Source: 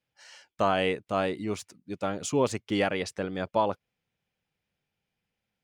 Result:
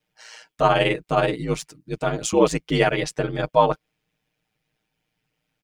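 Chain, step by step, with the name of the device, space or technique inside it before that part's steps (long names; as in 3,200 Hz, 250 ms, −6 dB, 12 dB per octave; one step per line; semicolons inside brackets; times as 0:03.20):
ring-modulated robot voice (ring modulation 57 Hz; comb filter 6.5 ms, depth 79%)
level +8 dB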